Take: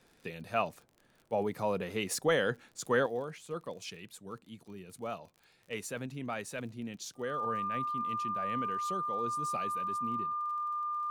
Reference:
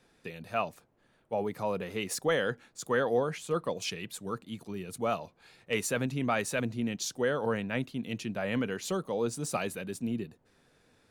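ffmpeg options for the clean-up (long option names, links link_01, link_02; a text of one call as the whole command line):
ffmpeg -i in.wav -af "adeclick=threshold=4,bandreject=frequency=1200:width=30,asetnsamples=nb_out_samples=441:pad=0,asendcmd='3.06 volume volume 8.5dB',volume=0dB" out.wav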